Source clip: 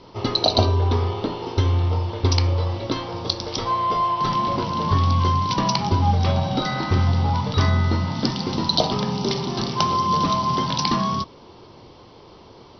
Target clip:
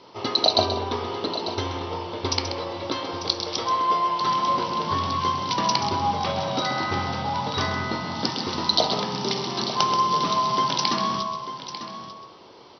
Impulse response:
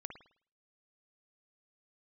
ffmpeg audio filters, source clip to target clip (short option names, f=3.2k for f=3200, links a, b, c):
-filter_complex "[0:a]highpass=f=460:p=1,aecho=1:1:895:0.251,asplit=2[a][b];[1:a]atrim=start_sample=2205,adelay=131[c];[b][c]afir=irnorm=-1:irlink=0,volume=-4dB[d];[a][d]amix=inputs=2:normalize=0"